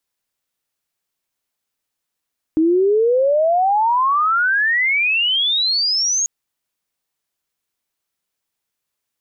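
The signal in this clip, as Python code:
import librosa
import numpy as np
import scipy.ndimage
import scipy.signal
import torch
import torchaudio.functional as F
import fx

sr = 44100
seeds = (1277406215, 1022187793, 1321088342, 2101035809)

y = fx.chirp(sr, length_s=3.69, from_hz=310.0, to_hz=6700.0, law='logarithmic', from_db=-11.5, to_db=-15.5)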